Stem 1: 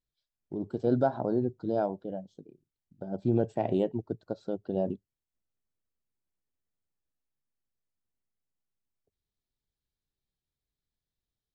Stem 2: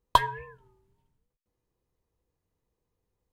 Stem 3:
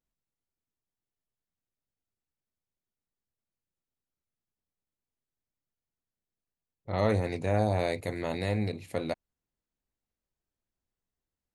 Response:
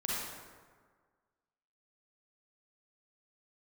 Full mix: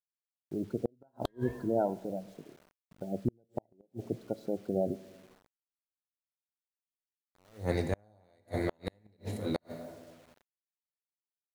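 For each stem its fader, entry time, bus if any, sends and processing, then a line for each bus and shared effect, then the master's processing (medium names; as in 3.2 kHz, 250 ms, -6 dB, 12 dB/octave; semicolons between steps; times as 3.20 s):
-1.0 dB, 0.00 s, send -21 dB, spectral gate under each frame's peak -25 dB strong
-0.5 dB, 1.10 s, send -23 dB, rotary cabinet horn 1.1 Hz
+1.0 dB, 0.45 s, send -9 dB, gate with hold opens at -37 dBFS; attacks held to a fixed rise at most 200 dB/s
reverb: on, RT60 1.6 s, pre-delay 33 ms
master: peaking EQ 2.5 kHz -11 dB 0.29 oct; word length cut 10-bit, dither none; inverted gate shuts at -17 dBFS, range -40 dB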